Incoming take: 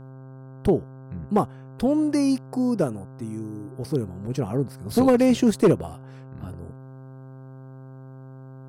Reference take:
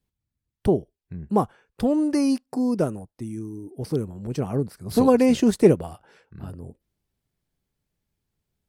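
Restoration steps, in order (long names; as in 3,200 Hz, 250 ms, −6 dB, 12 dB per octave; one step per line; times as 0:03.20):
clipped peaks rebuilt −11 dBFS
hum removal 132 Hz, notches 12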